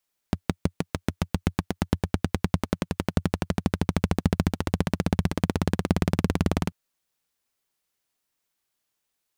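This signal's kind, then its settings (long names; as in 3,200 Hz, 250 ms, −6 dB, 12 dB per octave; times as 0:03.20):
pulse-train model of a single-cylinder engine, changing speed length 6.39 s, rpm 700, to 2,300, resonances 90/170 Hz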